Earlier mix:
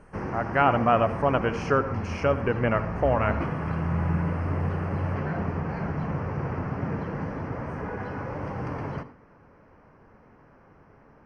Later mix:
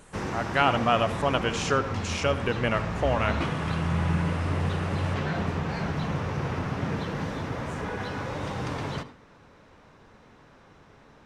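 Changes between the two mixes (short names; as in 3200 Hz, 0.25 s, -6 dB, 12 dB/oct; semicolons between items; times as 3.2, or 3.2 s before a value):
speech -3.0 dB; master: remove running mean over 12 samples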